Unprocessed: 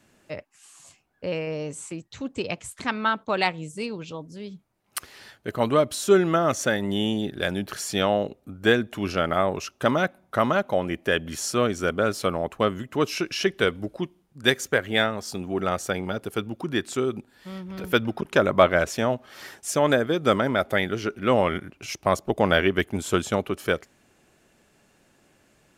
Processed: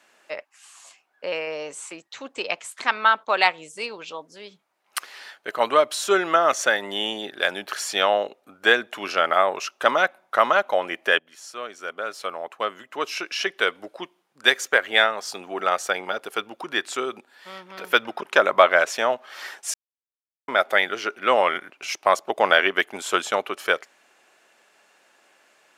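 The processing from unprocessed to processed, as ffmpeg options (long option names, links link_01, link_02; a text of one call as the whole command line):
ffmpeg -i in.wav -filter_complex "[0:a]asplit=4[link_01][link_02][link_03][link_04];[link_01]atrim=end=11.19,asetpts=PTS-STARTPTS,afade=type=out:start_time=11.186:duration=0.004:curve=hsin:silence=0.11885[link_05];[link_02]atrim=start=11.19:end=19.74,asetpts=PTS-STARTPTS,afade=type=in:duration=3.34:silence=0.11885,afade=type=out:start_time=8.546:duration=0.004:curve=hsin[link_06];[link_03]atrim=start=19.74:end=20.48,asetpts=PTS-STARTPTS,volume=0[link_07];[link_04]atrim=start=20.48,asetpts=PTS-STARTPTS,afade=type=in:duration=0.004:curve=hsin[link_08];[link_05][link_06][link_07][link_08]concat=n=4:v=0:a=1,highpass=710,highshelf=frequency=6300:gain=-9,alimiter=level_in=8dB:limit=-1dB:release=50:level=0:latency=1,volume=-1dB" out.wav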